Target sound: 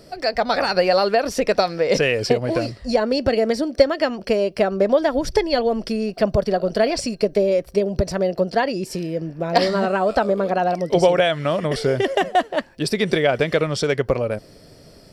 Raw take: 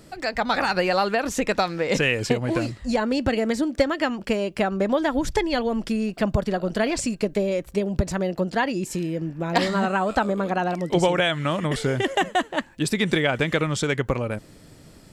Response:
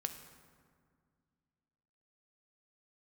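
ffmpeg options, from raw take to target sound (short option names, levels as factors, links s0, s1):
-af "superequalizer=7b=2:8b=2.24:14b=2.24:15b=0.562"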